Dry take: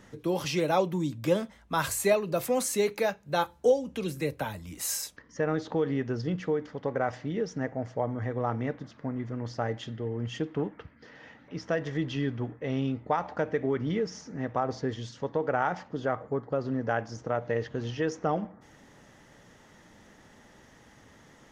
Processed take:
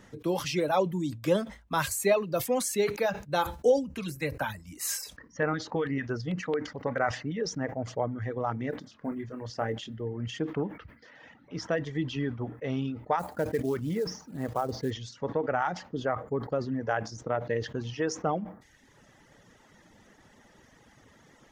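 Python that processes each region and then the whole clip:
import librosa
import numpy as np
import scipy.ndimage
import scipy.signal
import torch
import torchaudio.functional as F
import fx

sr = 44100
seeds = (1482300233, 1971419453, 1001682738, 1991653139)

y = fx.chain(x, sr, fx.filter_lfo_notch(shape='square', hz=4.5, low_hz=380.0, high_hz=3400.0, q=2.6),
    fx.dynamic_eq(hz=1700.0, q=1.1, threshold_db=-47.0, ratio=4.0, max_db=6), at=(3.87, 7.42))
y = fx.chain(y, sr, fx.peak_eq(hz=130.0, db=-12.5, octaves=0.2),
    fx.quant_float(bits=6),
    fx.doubler(ms=27.0, db=-9.5), at=(8.7, 10.01))
y = fx.chain(y, sr, fx.lowpass(hz=1500.0, slope=6),
    fx.quant_companded(bits=6), at=(13.19, 14.91))
y = fx.dereverb_blind(y, sr, rt60_s=1.0)
y = fx.sustainer(y, sr, db_per_s=130.0)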